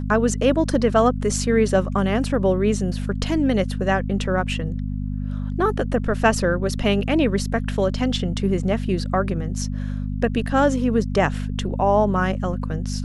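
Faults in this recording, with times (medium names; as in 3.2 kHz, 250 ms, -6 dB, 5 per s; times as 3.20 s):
hum 50 Hz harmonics 5 -26 dBFS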